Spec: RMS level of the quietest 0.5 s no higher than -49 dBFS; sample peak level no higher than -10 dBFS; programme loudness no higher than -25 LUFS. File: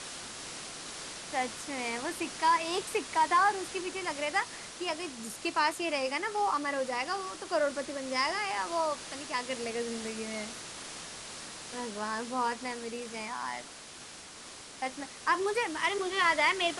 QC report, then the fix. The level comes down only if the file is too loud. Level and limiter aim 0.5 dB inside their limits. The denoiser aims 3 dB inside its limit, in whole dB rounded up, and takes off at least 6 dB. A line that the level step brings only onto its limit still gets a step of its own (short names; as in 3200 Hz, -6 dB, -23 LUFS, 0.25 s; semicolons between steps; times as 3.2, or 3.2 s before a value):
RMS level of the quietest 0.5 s -48 dBFS: fail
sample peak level -14.5 dBFS: OK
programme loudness -32.0 LUFS: OK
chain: denoiser 6 dB, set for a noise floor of -48 dBFS